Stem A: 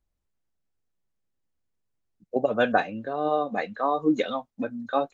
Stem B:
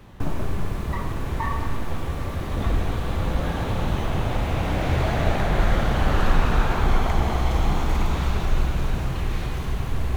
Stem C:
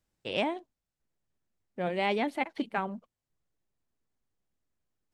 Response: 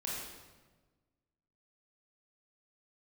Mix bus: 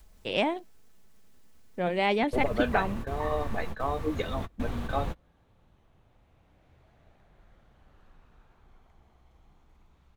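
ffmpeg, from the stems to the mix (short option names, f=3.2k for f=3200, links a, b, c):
-filter_complex "[0:a]aecho=1:1:4.6:0.4,acompressor=mode=upward:threshold=-26dB:ratio=2.5,adynamicequalizer=threshold=0.01:dfrequency=180:dqfactor=0.93:tfrequency=180:tqfactor=0.93:attack=5:release=100:ratio=0.375:range=2:mode=cutabove:tftype=bell,volume=-6dB,asplit=2[a][b];[1:a]adelay=1800,volume=-8.5dB[c];[2:a]volume=3dB[d];[b]apad=whole_len=527783[e];[c][e]sidechaingate=range=-31dB:threshold=-41dB:ratio=16:detection=peak[f];[a][f][d]amix=inputs=3:normalize=0"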